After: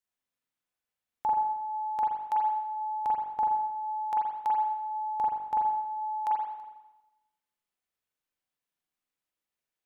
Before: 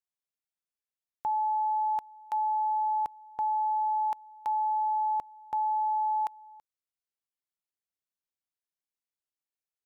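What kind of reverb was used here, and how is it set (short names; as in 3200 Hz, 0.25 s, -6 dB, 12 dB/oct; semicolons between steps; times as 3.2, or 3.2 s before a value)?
spring tank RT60 1 s, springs 40/44 ms, chirp 45 ms, DRR -4 dB; gain +1.5 dB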